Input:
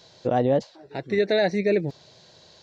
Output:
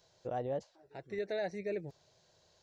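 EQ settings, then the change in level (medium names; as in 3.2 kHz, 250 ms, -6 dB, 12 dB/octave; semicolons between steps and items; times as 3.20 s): graphic EQ 125/250/500/1000/2000/4000 Hz -5/-11/-3/-4/-5/-10 dB; -8.5 dB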